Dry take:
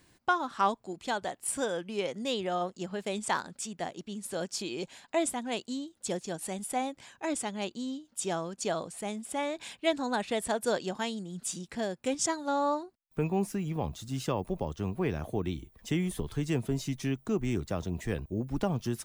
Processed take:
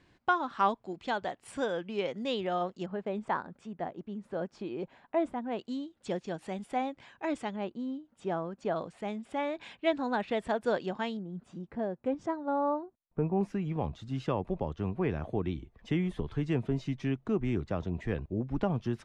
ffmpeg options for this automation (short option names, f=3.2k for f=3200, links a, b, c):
-af "asetnsamples=n=441:p=0,asendcmd='2.86 lowpass f 1400;5.59 lowpass f 2900;7.56 lowpass f 1600;8.76 lowpass f 2700;11.17 lowpass f 1100;13.41 lowpass f 2700',lowpass=3.5k"